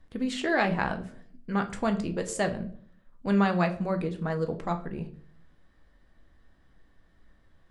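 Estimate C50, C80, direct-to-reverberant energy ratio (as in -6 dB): 13.5 dB, 17.5 dB, 5.5 dB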